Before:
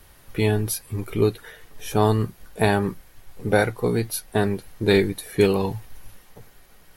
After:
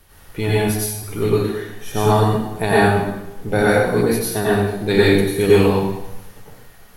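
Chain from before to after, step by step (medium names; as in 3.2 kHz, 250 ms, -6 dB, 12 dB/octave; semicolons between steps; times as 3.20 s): 0.58–1.02 s: amplifier tone stack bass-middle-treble 10-0-10; reverberation RT60 0.95 s, pre-delay 82 ms, DRR -8 dB; trim -2 dB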